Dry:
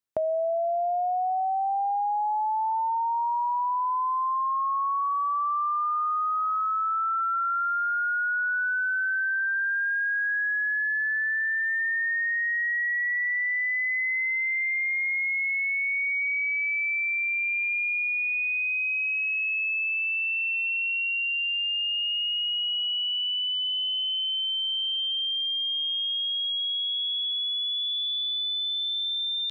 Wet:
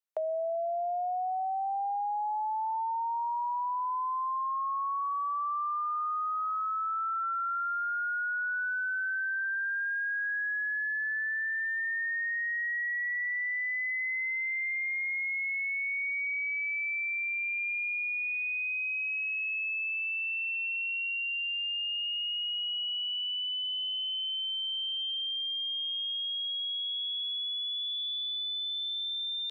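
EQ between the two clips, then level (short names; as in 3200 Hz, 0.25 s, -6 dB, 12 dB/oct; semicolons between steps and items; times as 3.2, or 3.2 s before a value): steep high-pass 430 Hz; -5.5 dB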